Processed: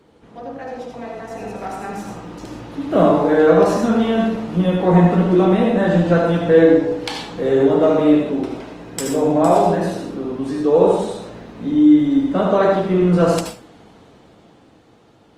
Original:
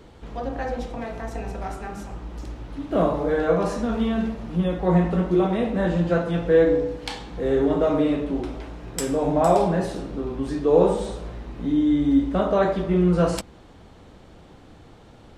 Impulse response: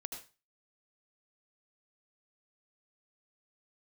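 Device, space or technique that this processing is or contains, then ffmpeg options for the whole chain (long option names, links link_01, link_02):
far-field microphone of a smart speaker: -filter_complex "[1:a]atrim=start_sample=2205[link_01];[0:a][link_01]afir=irnorm=-1:irlink=0,highpass=120,dynaudnorm=framelen=190:gausssize=17:maxgain=13dB" -ar 48000 -c:a libopus -b:a 24k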